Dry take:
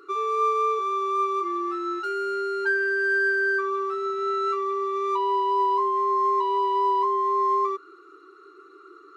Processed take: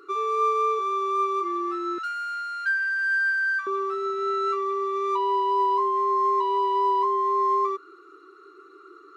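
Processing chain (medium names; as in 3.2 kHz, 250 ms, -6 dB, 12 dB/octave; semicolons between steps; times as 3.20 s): 1.98–3.67 s: steep high-pass 1.2 kHz 96 dB/octave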